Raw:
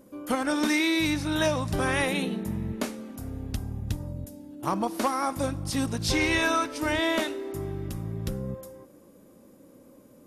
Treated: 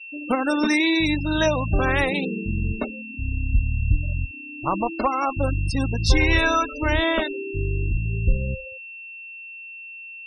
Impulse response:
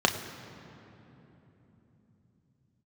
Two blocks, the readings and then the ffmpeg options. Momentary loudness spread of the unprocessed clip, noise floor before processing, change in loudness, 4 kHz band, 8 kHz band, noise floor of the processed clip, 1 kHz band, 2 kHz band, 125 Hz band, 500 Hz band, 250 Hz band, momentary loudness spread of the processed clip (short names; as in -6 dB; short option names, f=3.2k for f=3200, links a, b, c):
12 LU, -55 dBFS, +5.0 dB, +3.0 dB, -2.5 dB, -39 dBFS, +4.5 dB, +5.5 dB, +8.0 dB, +4.0 dB, +3.5 dB, 17 LU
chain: -af "aeval=exprs='val(0)+0.00891*sin(2*PI*2700*n/s)':c=same,asubboost=boost=7:cutoff=66,afftfilt=real='re*gte(hypot(re,im),0.0447)':imag='im*gte(hypot(re,im),0.0447)':win_size=1024:overlap=0.75,volume=5dB"